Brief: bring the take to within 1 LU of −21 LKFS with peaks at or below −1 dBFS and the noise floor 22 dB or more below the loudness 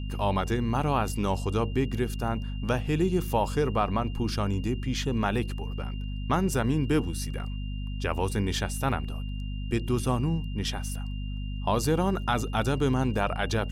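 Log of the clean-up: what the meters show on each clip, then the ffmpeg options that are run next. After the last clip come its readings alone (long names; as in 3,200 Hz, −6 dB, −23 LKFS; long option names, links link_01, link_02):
mains hum 50 Hz; hum harmonics up to 250 Hz; level of the hum −30 dBFS; interfering tone 2,800 Hz; level of the tone −48 dBFS; integrated loudness −28.5 LKFS; sample peak −12.5 dBFS; target loudness −21.0 LKFS
→ -af "bandreject=frequency=50:width_type=h:width=6,bandreject=frequency=100:width_type=h:width=6,bandreject=frequency=150:width_type=h:width=6,bandreject=frequency=200:width_type=h:width=6,bandreject=frequency=250:width_type=h:width=6"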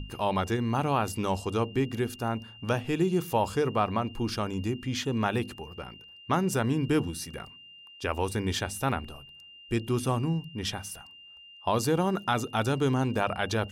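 mains hum none found; interfering tone 2,800 Hz; level of the tone −48 dBFS
→ -af "bandreject=frequency=2800:width=30"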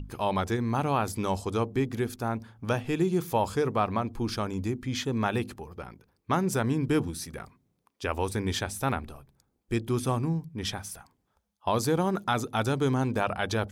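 interfering tone none found; integrated loudness −29.5 LKFS; sample peak −13.0 dBFS; target loudness −21.0 LKFS
→ -af "volume=8.5dB"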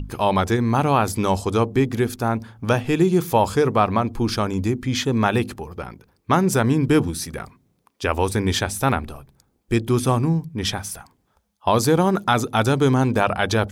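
integrated loudness −21.0 LKFS; sample peak −4.5 dBFS; background noise floor −67 dBFS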